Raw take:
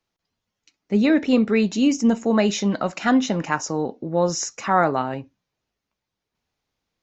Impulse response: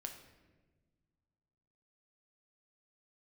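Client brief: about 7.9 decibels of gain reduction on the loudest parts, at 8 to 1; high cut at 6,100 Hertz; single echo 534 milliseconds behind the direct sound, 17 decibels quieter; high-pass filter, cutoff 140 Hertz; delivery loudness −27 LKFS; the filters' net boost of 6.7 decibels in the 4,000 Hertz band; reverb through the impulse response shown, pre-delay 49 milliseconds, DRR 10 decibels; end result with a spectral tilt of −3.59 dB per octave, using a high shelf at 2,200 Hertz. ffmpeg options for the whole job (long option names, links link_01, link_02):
-filter_complex "[0:a]highpass=140,lowpass=6100,highshelf=frequency=2200:gain=5,equalizer=frequency=4000:width_type=o:gain=5,acompressor=threshold=-21dB:ratio=8,aecho=1:1:534:0.141,asplit=2[link_01][link_02];[1:a]atrim=start_sample=2205,adelay=49[link_03];[link_02][link_03]afir=irnorm=-1:irlink=0,volume=-7dB[link_04];[link_01][link_04]amix=inputs=2:normalize=0,volume=-1dB"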